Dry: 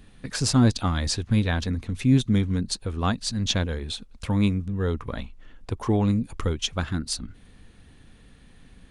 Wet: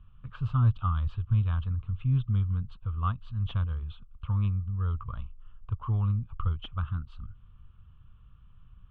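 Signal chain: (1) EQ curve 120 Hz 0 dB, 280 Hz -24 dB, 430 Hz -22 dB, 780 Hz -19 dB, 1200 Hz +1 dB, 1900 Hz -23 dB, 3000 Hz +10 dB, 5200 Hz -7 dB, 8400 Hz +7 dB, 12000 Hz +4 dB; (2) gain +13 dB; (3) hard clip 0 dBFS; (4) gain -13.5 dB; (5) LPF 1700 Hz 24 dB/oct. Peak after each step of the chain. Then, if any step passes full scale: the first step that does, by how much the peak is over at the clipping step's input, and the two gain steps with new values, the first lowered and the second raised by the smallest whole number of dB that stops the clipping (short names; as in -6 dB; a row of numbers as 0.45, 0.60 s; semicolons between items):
-6.5, +6.5, 0.0, -13.5, -15.0 dBFS; step 2, 6.5 dB; step 2 +6 dB, step 4 -6.5 dB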